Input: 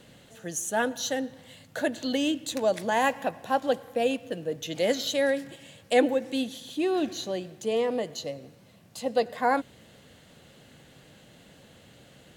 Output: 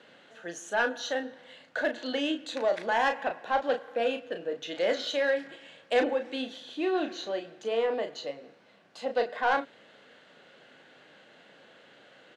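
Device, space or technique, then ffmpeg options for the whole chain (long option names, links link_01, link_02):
intercom: -filter_complex "[0:a]highpass=370,lowpass=3600,equalizer=frequency=1500:width_type=o:width=0.39:gain=6,asoftclip=type=tanh:threshold=-18.5dB,asplit=2[link_01][link_02];[link_02]adelay=35,volume=-7dB[link_03];[link_01][link_03]amix=inputs=2:normalize=0"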